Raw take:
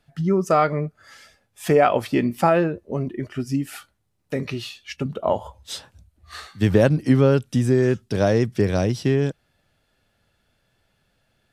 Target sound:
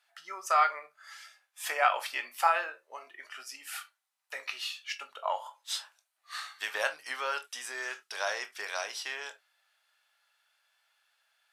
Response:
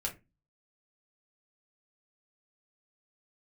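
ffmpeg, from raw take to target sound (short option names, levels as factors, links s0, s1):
-filter_complex "[0:a]highpass=f=900:w=0.5412,highpass=f=900:w=1.3066,asplit=2[s0][s1];[1:a]atrim=start_sample=2205,afade=t=out:st=0.13:d=0.01,atrim=end_sample=6174,adelay=19[s2];[s1][s2]afir=irnorm=-1:irlink=0,volume=0.316[s3];[s0][s3]amix=inputs=2:normalize=0,volume=0.794"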